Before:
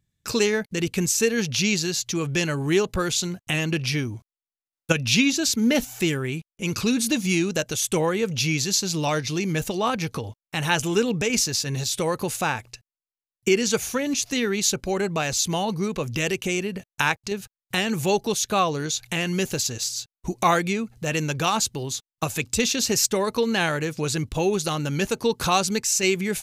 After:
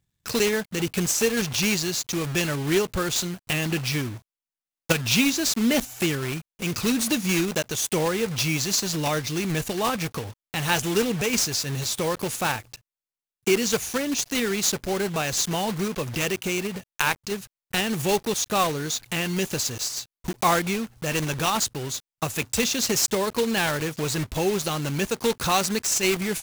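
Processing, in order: block floating point 3-bit; gain -1.5 dB

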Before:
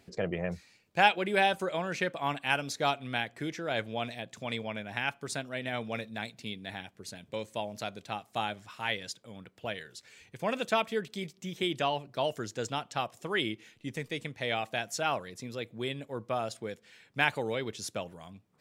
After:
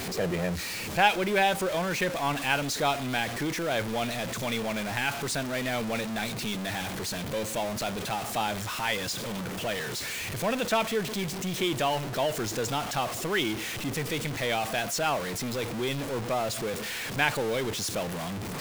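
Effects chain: zero-crossing step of -29 dBFS

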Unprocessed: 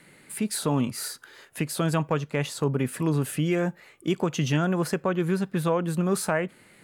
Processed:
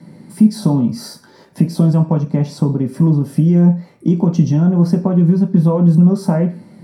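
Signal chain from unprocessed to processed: low shelf 350 Hz +11 dB; compressor 4:1, threshold -22 dBFS, peak gain reduction 9 dB; reverb, pre-delay 3 ms, DRR 2.5 dB; gain -6 dB

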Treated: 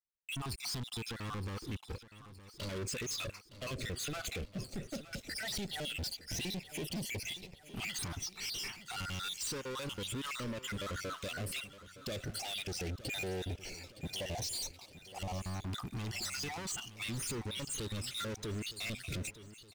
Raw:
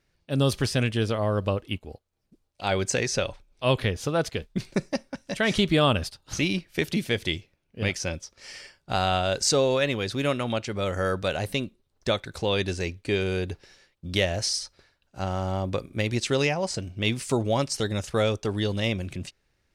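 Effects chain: random spectral dropouts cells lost 57%; gate with hold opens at -57 dBFS; bell 1700 Hz -13 dB 0.3 oct; compressor 10:1, threshold -34 dBFS, peak gain reduction 16.5 dB; limiter -32 dBFS, peak gain reduction 11.5 dB; sample leveller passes 5; LFO notch saw up 0.13 Hz 510–1500 Hz; feedback echo 0.916 s, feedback 51%, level -15 dB; gain -3.5 dB

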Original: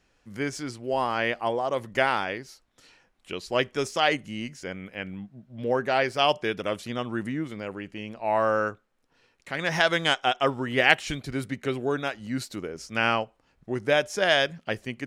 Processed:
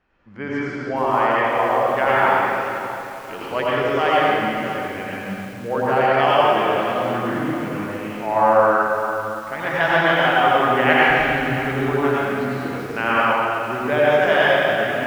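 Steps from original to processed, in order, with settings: LPF 2500 Hz 12 dB/oct; bell 1100 Hz +6.5 dB 1.5 oct; reverb RT60 2.5 s, pre-delay 79 ms, DRR -7.5 dB; lo-fi delay 0.574 s, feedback 55%, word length 5-bit, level -14 dB; gain -3 dB

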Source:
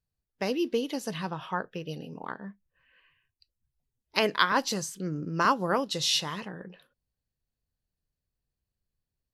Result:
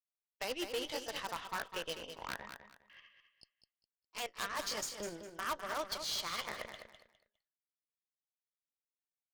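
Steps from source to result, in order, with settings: gliding pitch shift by +3.5 st starting unshifted; LPF 4700 Hz 12 dB/oct; gate with hold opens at -60 dBFS; HPF 660 Hz 12 dB/oct; high shelf 3600 Hz +4 dB; reverse; compressor 8:1, threshold -40 dBFS, peak gain reduction 22 dB; reverse; transient shaper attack +4 dB, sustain -5 dB; wavefolder -32.5 dBFS; added harmonics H 4 -14 dB, 6 -11 dB, 8 -31 dB, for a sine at -32.5 dBFS; on a send: feedback echo 0.204 s, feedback 25%, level -8.5 dB; on the sum: gain +3 dB

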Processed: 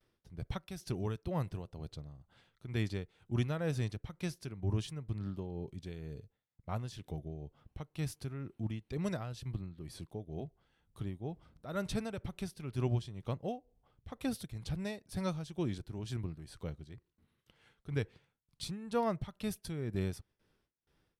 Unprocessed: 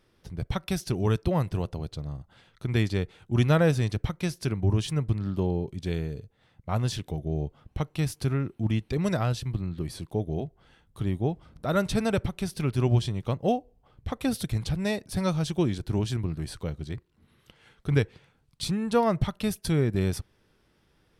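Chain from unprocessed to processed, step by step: tremolo 2.1 Hz, depth 60%; gate with hold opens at -58 dBFS; gain -8.5 dB

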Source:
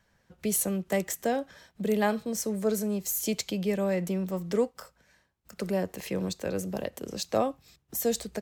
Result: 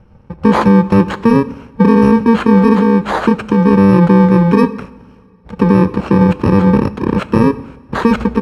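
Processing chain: FFT order left unsorted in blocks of 64 samples; LPF 1100 Hz 12 dB/oct; 2.74–3.71 compressor 2.5:1, threshold -37 dBFS, peak gain reduction 7.5 dB; two-slope reverb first 0.85 s, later 2.9 s, from -18 dB, DRR 16 dB; maximiser +28.5 dB; gain -1 dB

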